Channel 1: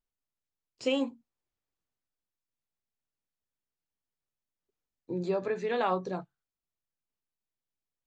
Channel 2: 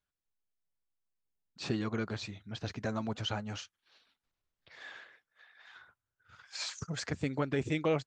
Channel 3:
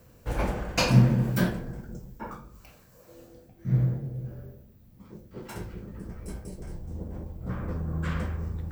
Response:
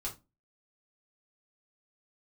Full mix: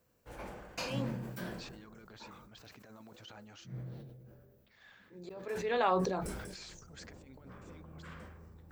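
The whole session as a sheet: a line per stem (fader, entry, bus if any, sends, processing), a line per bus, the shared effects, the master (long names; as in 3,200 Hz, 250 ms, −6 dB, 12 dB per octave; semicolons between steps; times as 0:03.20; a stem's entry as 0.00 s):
0.0 dB, 0.00 s, no send, volume swells 457 ms
−15.0 dB, 0.00 s, no send, compressor whose output falls as the input rises −36 dBFS, ratio −0.5
−14.5 dB, 0.00 s, no send, no processing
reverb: not used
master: low-shelf EQ 200 Hz −10 dB; level that may fall only so fast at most 34 dB per second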